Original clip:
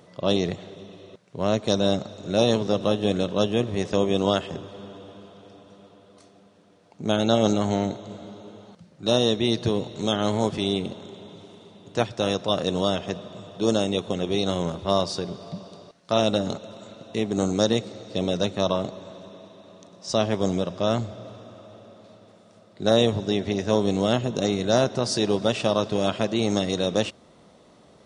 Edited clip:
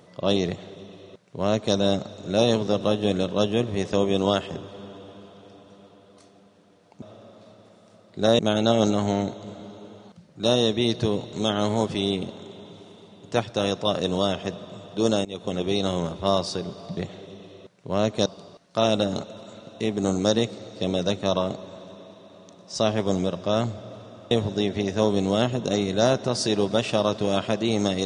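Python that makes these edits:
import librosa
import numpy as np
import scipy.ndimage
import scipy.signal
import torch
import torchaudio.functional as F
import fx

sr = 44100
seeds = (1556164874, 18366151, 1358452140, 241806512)

y = fx.edit(x, sr, fx.duplicate(start_s=0.46, length_s=1.29, to_s=15.6),
    fx.fade_in_from(start_s=13.88, length_s=0.29, floor_db=-21.5),
    fx.move(start_s=21.65, length_s=1.37, to_s=7.02), tone=tone)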